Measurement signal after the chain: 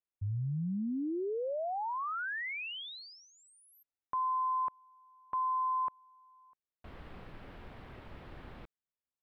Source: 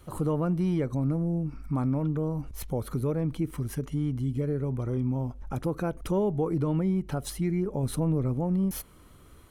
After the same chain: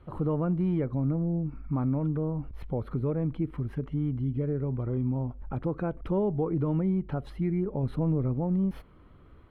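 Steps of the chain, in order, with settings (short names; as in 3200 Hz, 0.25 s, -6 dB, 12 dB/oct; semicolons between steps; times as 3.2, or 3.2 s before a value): air absorption 450 m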